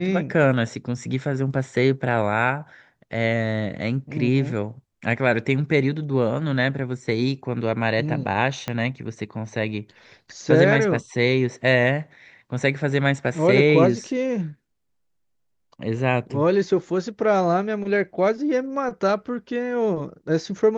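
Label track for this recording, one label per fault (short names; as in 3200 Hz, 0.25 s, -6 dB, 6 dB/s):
8.680000	8.680000	pop -12 dBFS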